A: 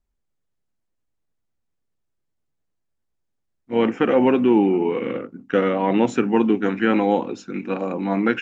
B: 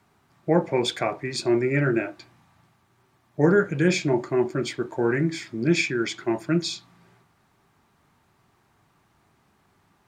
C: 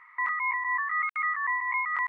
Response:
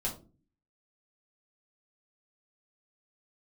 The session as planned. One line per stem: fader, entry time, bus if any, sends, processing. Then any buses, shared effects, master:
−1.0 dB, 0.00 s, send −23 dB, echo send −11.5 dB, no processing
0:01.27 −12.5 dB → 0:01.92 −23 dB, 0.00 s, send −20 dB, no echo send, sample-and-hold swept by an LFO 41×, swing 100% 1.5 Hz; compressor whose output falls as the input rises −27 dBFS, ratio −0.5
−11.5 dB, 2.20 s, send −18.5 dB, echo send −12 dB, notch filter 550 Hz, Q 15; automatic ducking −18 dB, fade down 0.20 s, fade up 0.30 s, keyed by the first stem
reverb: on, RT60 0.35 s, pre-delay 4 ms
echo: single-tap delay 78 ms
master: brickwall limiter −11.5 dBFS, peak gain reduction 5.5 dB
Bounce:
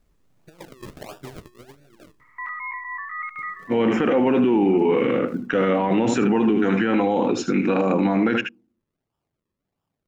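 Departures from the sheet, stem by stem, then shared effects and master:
stem A −1.0 dB → +10.5 dB
stem C −11.5 dB → −4.0 dB
reverb return −8.0 dB

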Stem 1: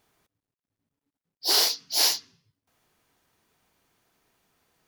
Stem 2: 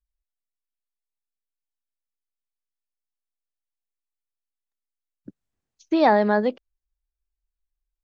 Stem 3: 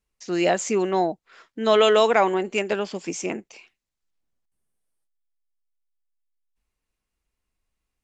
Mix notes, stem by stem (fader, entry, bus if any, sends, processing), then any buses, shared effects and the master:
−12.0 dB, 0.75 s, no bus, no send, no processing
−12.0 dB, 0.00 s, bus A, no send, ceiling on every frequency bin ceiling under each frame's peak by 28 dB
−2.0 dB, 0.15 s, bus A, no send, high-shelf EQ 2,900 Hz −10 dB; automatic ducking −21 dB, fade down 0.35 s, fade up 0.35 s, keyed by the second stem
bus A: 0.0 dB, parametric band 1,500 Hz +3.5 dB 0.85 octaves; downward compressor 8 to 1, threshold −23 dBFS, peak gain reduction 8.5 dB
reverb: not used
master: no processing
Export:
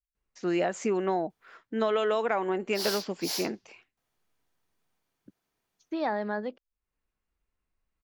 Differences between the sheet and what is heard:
stem 1: entry 0.75 s → 1.30 s
stem 2: missing ceiling on every frequency bin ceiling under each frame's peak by 28 dB

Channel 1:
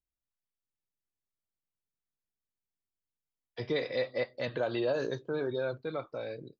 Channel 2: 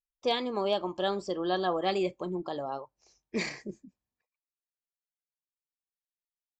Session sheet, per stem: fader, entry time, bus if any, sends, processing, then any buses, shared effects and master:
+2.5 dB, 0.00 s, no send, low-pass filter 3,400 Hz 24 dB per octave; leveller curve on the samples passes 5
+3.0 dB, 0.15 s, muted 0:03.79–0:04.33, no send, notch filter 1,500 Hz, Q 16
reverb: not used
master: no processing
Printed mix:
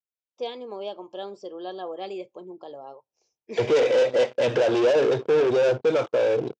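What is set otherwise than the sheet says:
stem 2 +3.0 dB → −5.5 dB
master: extra loudspeaker in its box 150–6,600 Hz, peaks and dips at 170 Hz −10 dB, 280 Hz −4 dB, 470 Hz +5 dB, 1,200 Hz −6 dB, 1,900 Hz −8 dB, 4,200 Hz −6 dB

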